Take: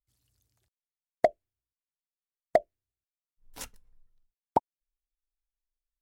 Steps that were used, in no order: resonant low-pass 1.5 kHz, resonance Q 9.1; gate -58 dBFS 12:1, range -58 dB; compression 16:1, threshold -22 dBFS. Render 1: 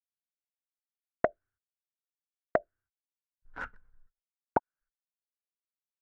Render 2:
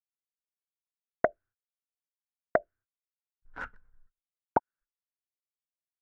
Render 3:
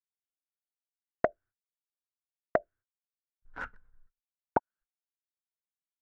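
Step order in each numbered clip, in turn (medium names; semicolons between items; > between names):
resonant low-pass > gate > compression; compression > resonant low-pass > gate; resonant low-pass > compression > gate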